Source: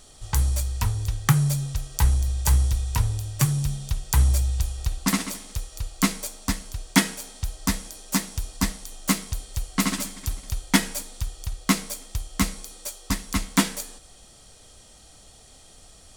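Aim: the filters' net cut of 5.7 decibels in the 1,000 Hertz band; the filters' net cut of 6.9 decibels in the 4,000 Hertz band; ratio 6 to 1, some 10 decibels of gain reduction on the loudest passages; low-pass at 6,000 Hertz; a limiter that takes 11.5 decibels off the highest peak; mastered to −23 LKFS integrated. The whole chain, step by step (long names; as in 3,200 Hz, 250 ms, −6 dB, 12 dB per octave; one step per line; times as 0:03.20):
low-pass filter 6,000 Hz
parametric band 1,000 Hz −6.5 dB
parametric band 4,000 Hz −7.5 dB
downward compressor 6 to 1, threshold −25 dBFS
level +12.5 dB
brickwall limiter −11 dBFS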